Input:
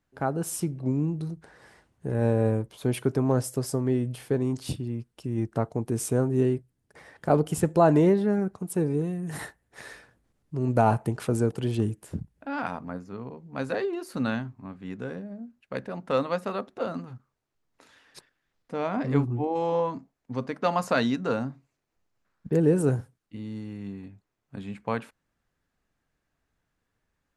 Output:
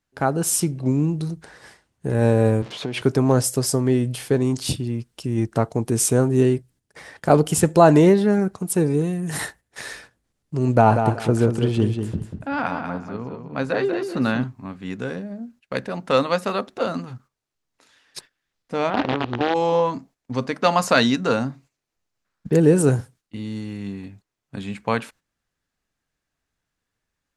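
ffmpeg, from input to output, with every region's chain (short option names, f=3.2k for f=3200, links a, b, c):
-filter_complex "[0:a]asettb=1/sr,asplit=3[a][b][c];[a]atrim=end=2.624[d];[b]atrim=start=2.62:end=3.02,asetpts=PTS-STARTPTS,afade=t=in:d=0.004:c=qsin,afade=t=out:st=0.396:d=0.004:c=qsin,aeval=exprs='val(0)+0.5*0.01*sgn(val(0))':c=same,acompressor=threshold=-27dB:ratio=12:attack=3.2:release=140:knee=1:detection=peak,highpass=140,lowpass=4k[e];[c]atrim=start=3.016[f];[d][e]acrossfade=d=0.004:c1=hsin:c2=qsin[g];[g][f]acrossfade=d=0.004:c1=qsin:c2=hsin,asettb=1/sr,asplit=3[h][i][j];[h]atrim=end=10.754[k];[i]atrim=start=10.75:end=14.44,asetpts=PTS-STARTPTS,afade=t=in:d=0.004:c=qsin,afade=t=out:st=3.686:d=0.004:c=qsin,lowpass=f=2.2k:p=1,aecho=1:1:190|380|570:0.447|0.0983|0.0216,atrim=end_sample=162729[l];[j]atrim=start=14.436[m];[k][l]acrossfade=d=0.004:c1=hsin:c2=qsin[n];[n][m]acrossfade=d=0.004:c1=qsin:c2=hsin,asettb=1/sr,asplit=3[o][p][q];[o]atrim=end=18.904[r];[p]atrim=start=18.9:end=19.54,asetpts=PTS-STARTPTS,afade=t=in:d=0.004:c=qsin,afade=t=out:st=0.636:d=0.004:c=qsin,acompressor=threshold=-23dB:ratio=16:attack=3.2:release=140:knee=1:detection=peak,acrusher=bits=5:dc=4:mix=0:aa=0.000001,highpass=100,equalizer=f=150:t=q:w=4:g=-9,equalizer=f=320:t=q:w=4:g=3,equalizer=f=790:t=q:w=4:g=3,equalizer=f=2.2k:t=q:w=4:g=-6,lowpass=f=3.2k:w=0.5412,lowpass=f=3.2k:w=1.3066[s];[q]atrim=start=19.536[t];[r][s]acrossfade=d=0.004:c1=hsin:c2=qsin[u];[u][t]acrossfade=d=0.004:c1=qsin:c2=hsin,agate=range=-10dB:threshold=-54dB:ratio=16:detection=peak,equalizer=f=6k:t=o:w=2.8:g=7.5,volume=6dB"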